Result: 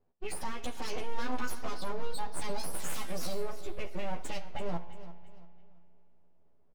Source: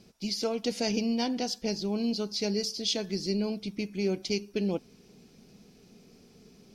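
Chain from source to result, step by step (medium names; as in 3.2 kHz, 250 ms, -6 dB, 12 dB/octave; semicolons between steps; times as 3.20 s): 2.73–3.42 s: zero-crossing glitches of -27 dBFS; spectral noise reduction 26 dB; 0.93–1.91 s: high-order bell 840 Hz +11 dB; level-controlled noise filter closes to 1.1 kHz, open at -24 dBFS; compression, threshold -34 dBFS, peak gain reduction 13 dB; peak limiter -35.5 dBFS, peak gain reduction 10.5 dB; feedback comb 57 Hz, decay 0.59 s, harmonics all, mix 50%; full-wave rectifier; wow and flutter 18 cents; doubling 12 ms -3 dB; feedback delay 340 ms, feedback 36%, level -15 dB; spring tank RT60 3 s, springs 34 ms, chirp 40 ms, DRR 17 dB; trim +12 dB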